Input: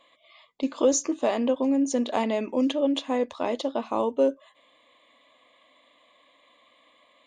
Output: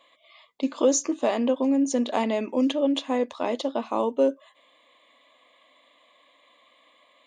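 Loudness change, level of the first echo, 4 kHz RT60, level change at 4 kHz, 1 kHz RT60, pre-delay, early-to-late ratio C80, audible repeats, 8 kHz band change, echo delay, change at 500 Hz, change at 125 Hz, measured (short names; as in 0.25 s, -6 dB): +1.0 dB, none, none, +1.0 dB, none, none, none, none, +1.0 dB, none, +0.5 dB, n/a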